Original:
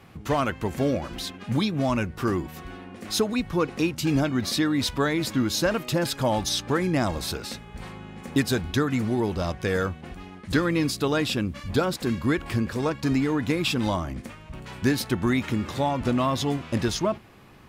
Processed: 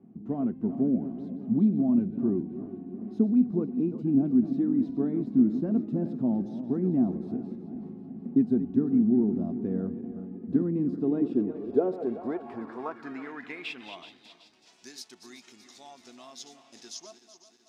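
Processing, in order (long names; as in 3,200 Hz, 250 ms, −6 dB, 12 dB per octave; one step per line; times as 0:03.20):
feedback delay that plays each chunk backwards 189 ms, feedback 71%, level −11.5 dB
band-pass filter sweep 210 Hz → 5,900 Hz, 0:10.92–0:14.75
hollow resonant body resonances 250/370/680 Hz, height 14 dB, ringing for 30 ms
level −7 dB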